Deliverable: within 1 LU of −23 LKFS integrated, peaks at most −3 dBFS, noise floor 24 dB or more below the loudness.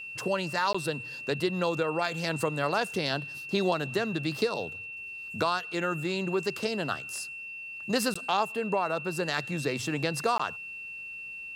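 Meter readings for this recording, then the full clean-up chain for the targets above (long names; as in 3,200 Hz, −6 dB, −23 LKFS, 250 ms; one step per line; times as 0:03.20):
number of dropouts 3; longest dropout 15 ms; interfering tone 2,700 Hz; level of the tone −38 dBFS; integrated loudness −30.5 LKFS; sample peak −13.5 dBFS; target loudness −23.0 LKFS
→ repair the gap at 0:00.73/0:08.14/0:10.38, 15 ms
notch filter 2,700 Hz, Q 30
level +7.5 dB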